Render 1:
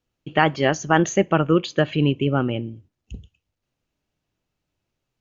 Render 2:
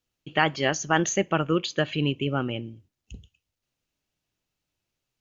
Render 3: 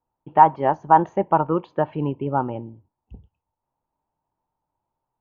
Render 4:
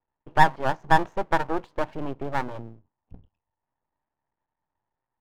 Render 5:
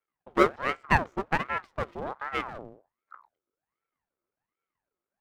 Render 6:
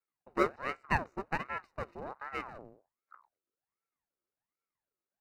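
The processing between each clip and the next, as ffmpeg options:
-af "highshelf=f=2k:g=9,volume=-6.5dB"
-af "lowpass=f=910:t=q:w=9.8"
-af "aeval=exprs='max(val(0),0)':c=same"
-af "aeval=exprs='val(0)*sin(2*PI*850*n/s+850*0.6/1.3*sin(2*PI*1.3*n/s))':c=same,volume=-2.5dB"
-af "asuperstop=centerf=3300:order=8:qfactor=5.1,volume=-7.5dB"

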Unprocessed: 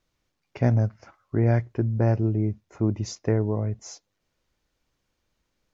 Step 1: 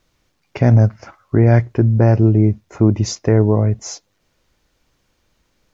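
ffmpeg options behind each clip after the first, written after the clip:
-af "alimiter=level_in=12.5dB:limit=-1dB:release=50:level=0:latency=1,volume=-1dB"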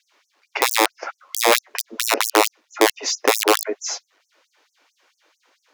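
-filter_complex "[0:a]asplit=2[a][b];[b]highpass=f=720:p=1,volume=16dB,asoftclip=type=tanh:threshold=-1.5dB[c];[a][c]amix=inputs=2:normalize=0,lowpass=f=2.3k:p=1,volume=-6dB,aeval=exprs='(mod(1.88*val(0)+1,2)-1)/1.88':c=same,afftfilt=real='re*gte(b*sr/1024,240*pow(5700/240,0.5+0.5*sin(2*PI*4.5*pts/sr)))':imag='im*gte(b*sr/1024,240*pow(5700/240,0.5+0.5*sin(2*PI*4.5*pts/sr)))':win_size=1024:overlap=0.75,volume=1dB"

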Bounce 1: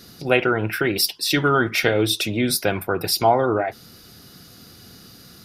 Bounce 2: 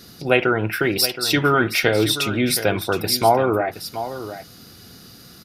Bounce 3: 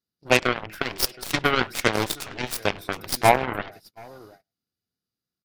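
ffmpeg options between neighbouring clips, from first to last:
-af "aecho=1:1:721:0.251,volume=1dB"
-filter_complex "[0:a]asplit=2[a][b];[b]adelay=100,highpass=300,lowpass=3.4k,asoftclip=type=hard:threshold=-11.5dB,volume=-14dB[c];[a][c]amix=inputs=2:normalize=0,aeval=exprs='0.891*(cos(1*acos(clip(val(0)/0.891,-1,1)))-cos(1*PI/2))+0.0708*(cos(4*acos(clip(val(0)/0.891,-1,1)))-cos(4*PI/2))+0.158*(cos(7*acos(clip(val(0)/0.891,-1,1)))-cos(7*PI/2))':c=same,agate=range=-33dB:threshold=-43dB:ratio=16:detection=peak"

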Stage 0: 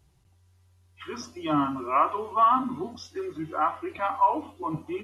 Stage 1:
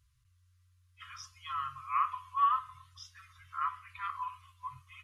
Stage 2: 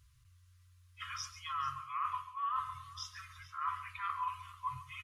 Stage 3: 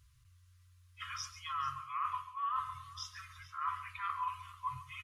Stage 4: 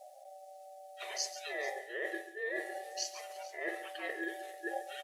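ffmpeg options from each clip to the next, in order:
-af "afftfilt=real='re*(1-between(b*sr/4096,130,1000))':imag='im*(1-between(b*sr/4096,130,1000))':win_size=4096:overlap=0.75,volume=-6.5dB"
-af "areverse,acompressor=threshold=-39dB:ratio=12,areverse,aecho=1:1:139|442:0.2|0.119,volume=5.5dB"
-af anull
-af "bass=f=250:g=14,treble=f=4k:g=12,aeval=exprs='val(0)*sin(2*PI*670*n/s)':c=same,volume=1dB"

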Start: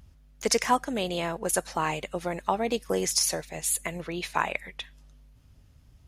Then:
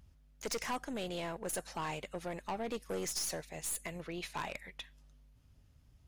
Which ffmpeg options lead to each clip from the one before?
-af "aeval=exprs='(tanh(20*val(0)+0.35)-tanh(0.35))/20':c=same,volume=-6.5dB"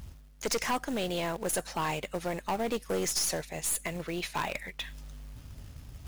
-af "areverse,acompressor=mode=upward:threshold=-41dB:ratio=2.5,areverse,acrusher=bits=4:mode=log:mix=0:aa=0.000001,volume=7dB"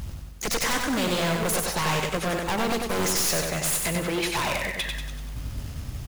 -filter_complex "[0:a]aeval=exprs='0.0708*sin(PI/2*2.24*val(0)/0.0708)':c=same,asplit=2[a][b];[b]aecho=0:1:95|190|285|380|475|570:0.631|0.303|0.145|0.0698|0.0335|0.0161[c];[a][c]amix=inputs=2:normalize=0"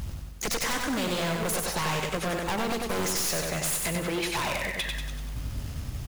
-af "acompressor=threshold=-28dB:ratio=2"

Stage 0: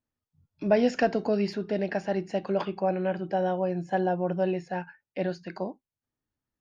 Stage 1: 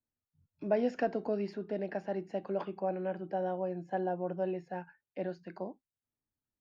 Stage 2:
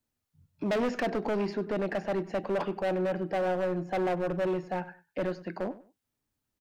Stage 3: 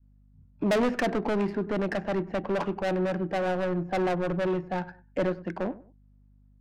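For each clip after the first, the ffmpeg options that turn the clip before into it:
-filter_complex "[0:a]highshelf=f=2.3k:g=-11.5,acrossover=split=190|1100|2300[a][b][c][d];[a]acompressor=threshold=-46dB:ratio=6[e];[e][b][c][d]amix=inputs=4:normalize=0,volume=-6dB"
-filter_complex "[0:a]aeval=exprs='0.141*(cos(1*acos(clip(val(0)/0.141,-1,1)))-cos(1*PI/2))+0.0501*(cos(5*acos(clip(val(0)/0.141,-1,1)))-cos(5*PI/2))':c=same,volume=25.5dB,asoftclip=hard,volume=-25.5dB,asplit=2[a][b];[b]adelay=98,lowpass=f=3.2k:p=1,volume=-17dB,asplit=2[c][d];[d]adelay=98,lowpass=f=3.2k:p=1,volume=0.25[e];[a][c][e]amix=inputs=3:normalize=0"
-af "aeval=exprs='val(0)+0.000794*(sin(2*PI*50*n/s)+sin(2*PI*2*50*n/s)/2+sin(2*PI*3*50*n/s)/3+sin(2*PI*4*50*n/s)/4+sin(2*PI*5*50*n/s)/5)':c=same,adynamicequalizer=threshold=0.00708:dfrequency=560:dqfactor=0.98:tfrequency=560:tqfactor=0.98:attack=5:release=100:ratio=0.375:range=2.5:mode=cutabove:tftype=bell,adynamicsmooth=sensitivity=7:basefreq=1.3k,volume=5dB"

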